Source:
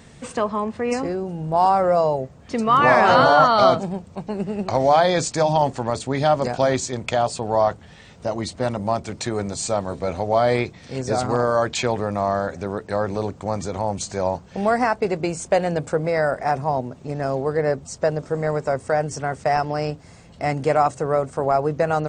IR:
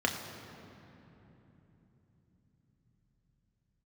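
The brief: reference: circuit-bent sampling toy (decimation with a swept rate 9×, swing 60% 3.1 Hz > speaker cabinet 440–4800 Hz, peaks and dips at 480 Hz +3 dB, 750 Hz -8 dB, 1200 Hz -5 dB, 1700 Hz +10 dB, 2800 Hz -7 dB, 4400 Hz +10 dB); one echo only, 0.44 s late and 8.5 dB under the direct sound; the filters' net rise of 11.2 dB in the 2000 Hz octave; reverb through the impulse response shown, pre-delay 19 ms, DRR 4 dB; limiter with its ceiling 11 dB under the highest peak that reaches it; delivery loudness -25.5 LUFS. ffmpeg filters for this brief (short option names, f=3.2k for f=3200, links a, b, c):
-filter_complex "[0:a]equalizer=f=2k:t=o:g=7,alimiter=limit=-9.5dB:level=0:latency=1,aecho=1:1:440:0.376,asplit=2[a][b];[1:a]atrim=start_sample=2205,adelay=19[c];[b][c]afir=irnorm=-1:irlink=0,volume=-13.5dB[d];[a][d]amix=inputs=2:normalize=0,acrusher=samples=9:mix=1:aa=0.000001:lfo=1:lforange=5.4:lforate=3.1,highpass=440,equalizer=f=480:t=q:w=4:g=3,equalizer=f=750:t=q:w=4:g=-8,equalizer=f=1.2k:t=q:w=4:g=-5,equalizer=f=1.7k:t=q:w=4:g=10,equalizer=f=2.8k:t=q:w=4:g=-7,equalizer=f=4.4k:t=q:w=4:g=10,lowpass=f=4.8k:w=0.5412,lowpass=f=4.8k:w=1.3066,volume=-4dB"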